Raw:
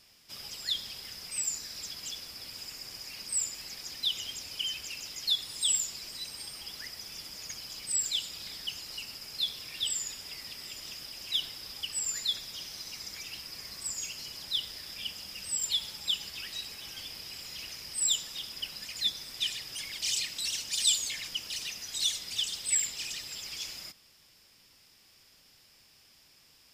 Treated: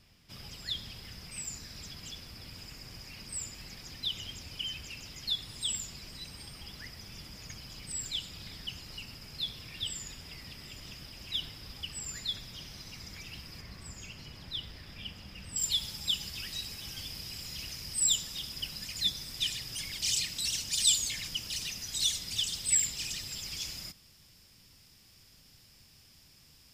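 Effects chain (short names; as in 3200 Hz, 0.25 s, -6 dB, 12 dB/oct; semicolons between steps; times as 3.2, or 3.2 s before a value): tone controls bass +13 dB, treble -7 dB, from 13.6 s treble -14 dB, from 15.55 s treble +3 dB; gain -1.5 dB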